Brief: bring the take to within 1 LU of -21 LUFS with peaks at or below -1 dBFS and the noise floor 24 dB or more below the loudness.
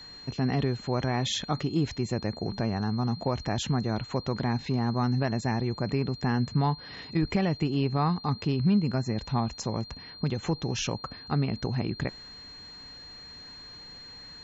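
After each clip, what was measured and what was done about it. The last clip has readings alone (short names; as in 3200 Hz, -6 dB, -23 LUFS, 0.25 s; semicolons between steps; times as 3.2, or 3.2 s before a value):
steady tone 4200 Hz; tone level -44 dBFS; loudness -29.0 LUFS; peak -14.0 dBFS; loudness target -21.0 LUFS
-> notch 4200 Hz, Q 30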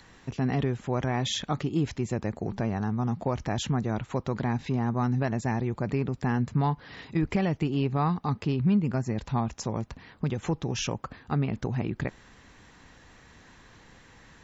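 steady tone none; loudness -29.5 LUFS; peak -14.0 dBFS; loudness target -21.0 LUFS
-> gain +8.5 dB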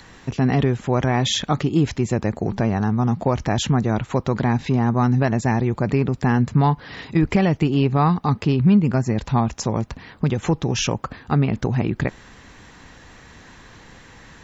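loudness -21.0 LUFS; peak -5.5 dBFS; noise floor -47 dBFS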